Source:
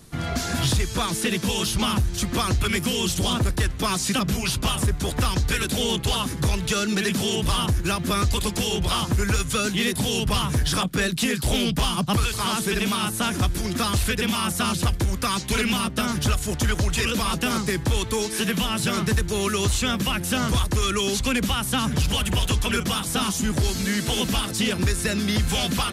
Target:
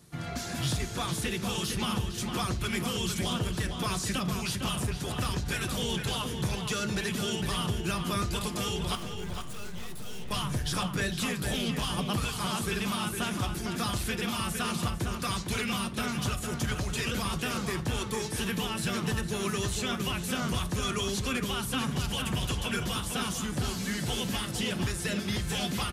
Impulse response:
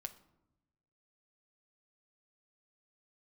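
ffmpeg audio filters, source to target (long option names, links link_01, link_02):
-filter_complex "[0:a]highpass=51,asettb=1/sr,asplit=3[link_01][link_02][link_03];[link_01]atrim=end=8.954[link_04];[link_02]atrim=start=8.95:end=10.31,asetpts=PTS-STARTPTS,afade=type=in:duration=0.004:curve=qsin,afade=type=out:start_time=1.356:duration=0.004:curve=qsin,aeval=exprs='(tanh(56.2*val(0)+0.75)-tanh(0.75))/56.2':channel_layout=same[link_05];[link_03]atrim=start=10.306[link_06];[link_04][link_05]acrossfade=duration=0.004:curve1=hsin:curve2=qsin[link_07];[link_07][link_06]acrossfade=duration=0.004:curve1=qsin:curve2=hsin,asplit=2[link_08][link_09];[link_09]adelay=457,lowpass=frequency=3000:poles=1,volume=-5.5dB,asplit=2[link_10][link_11];[link_11]adelay=457,lowpass=frequency=3000:poles=1,volume=0.36,asplit=2[link_12][link_13];[link_13]adelay=457,lowpass=frequency=3000:poles=1,volume=0.36,asplit=2[link_14][link_15];[link_15]adelay=457,lowpass=frequency=3000:poles=1,volume=0.36[link_16];[link_08][link_10][link_12][link_14][link_16]amix=inputs=5:normalize=0[link_17];[1:a]atrim=start_sample=2205,atrim=end_sample=3969[link_18];[link_17][link_18]afir=irnorm=-1:irlink=0,volume=-4.5dB"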